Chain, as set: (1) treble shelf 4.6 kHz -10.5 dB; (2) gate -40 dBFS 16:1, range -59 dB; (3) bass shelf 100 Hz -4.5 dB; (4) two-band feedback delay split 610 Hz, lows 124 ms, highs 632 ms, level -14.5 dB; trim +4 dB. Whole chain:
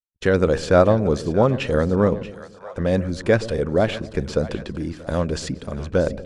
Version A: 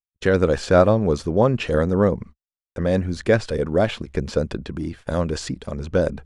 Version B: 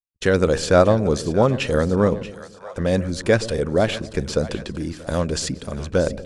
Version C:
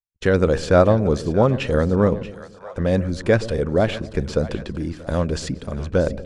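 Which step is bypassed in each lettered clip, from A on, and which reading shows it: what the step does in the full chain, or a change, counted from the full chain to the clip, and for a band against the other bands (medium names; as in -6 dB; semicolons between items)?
4, echo-to-direct -13.0 dB to none; 1, 8 kHz band +7.0 dB; 3, 125 Hz band +2.0 dB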